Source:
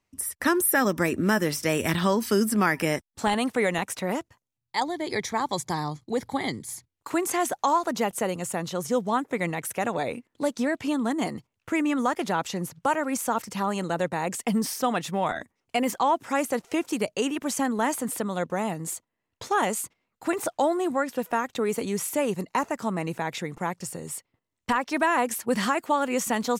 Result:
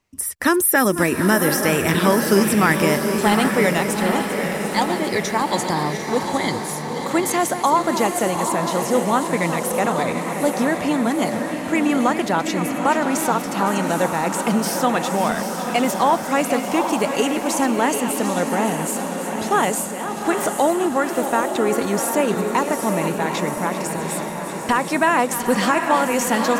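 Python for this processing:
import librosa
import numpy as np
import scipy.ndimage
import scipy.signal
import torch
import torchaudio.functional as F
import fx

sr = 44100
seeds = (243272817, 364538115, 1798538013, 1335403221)

y = fx.reverse_delay_fb(x, sr, ms=374, feedback_pct=77, wet_db=-11.0)
y = fx.echo_diffused(y, sr, ms=827, feedback_pct=55, wet_db=-7.0)
y = y * 10.0 ** (5.5 / 20.0)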